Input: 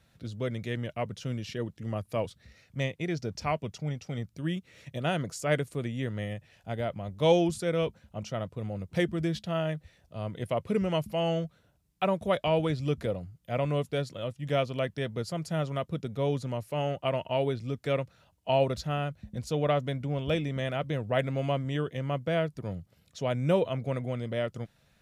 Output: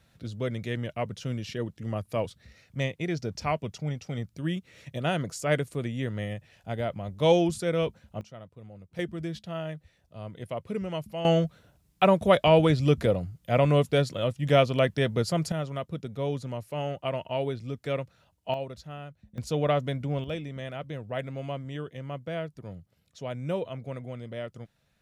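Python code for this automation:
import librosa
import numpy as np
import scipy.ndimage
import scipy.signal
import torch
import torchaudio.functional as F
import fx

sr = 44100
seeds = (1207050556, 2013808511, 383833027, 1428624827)

y = fx.gain(x, sr, db=fx.steps((0.0, 1.5), (8.21, -11.5), (8.99, -4.5), (11.25, 7.0), (15.52, -1.5), (18.54, -10.0), (19.38, 1.5), (20.24, -5.5)))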